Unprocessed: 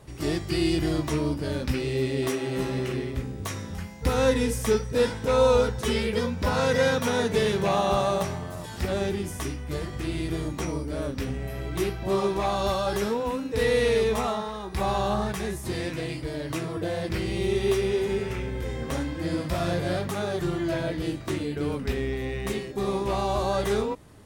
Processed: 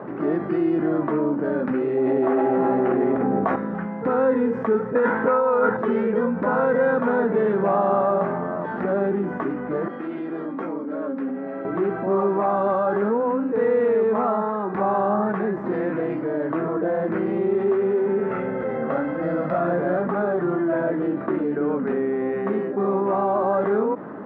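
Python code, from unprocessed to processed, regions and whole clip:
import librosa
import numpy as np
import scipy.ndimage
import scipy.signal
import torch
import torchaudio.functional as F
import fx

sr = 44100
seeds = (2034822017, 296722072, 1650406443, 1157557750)

y = fx.chain(x, sr, fx.peak_eq(hz=750.0, db=11.5, octaves=0.44),
    fx.env_flatten(amount_pct=100), at=(1.97, 3.56))
y = fx.chain(y, sr, fx.peak_eq(hz=1600.0, db=9.5, octaves=1.9),
    fx.over_compress(threshold_db=-21.0, ratio=-1.0),
    fx.notch(hz=1500.0, q=25.0), at=(4.95, 5.77))
y = fx.chain(y, sr, fx.highpass(hz=170.0, slope=24),
    fx.high_shelf(hz=3400.0, db=8.0),
    fx.comb_fb(f0_hz=270.0, decay_s=0.15, harmonics='all', damping=0.0, mix_pct=80), at=(9.88, 11.65))
y = fx.chain(y, sr, fx.highpass(hz=44.0, slope=12),
    fx.high_shelf(hz=4800.0, db=8.5),
    fx.comb(ms=1.5, depth=0.45), at=(18.31, 19.59))
y = scipy.signal.sosfilt(scipy.signal.cheby1(3, 1.0, [200.0, 1500.0], 'bandpass', fs=sr, output='sos'), y)
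y = fx.env_flatten(y, sr, amount_pct=50)
y = y * 10.0 ** (1.5 / 20.0)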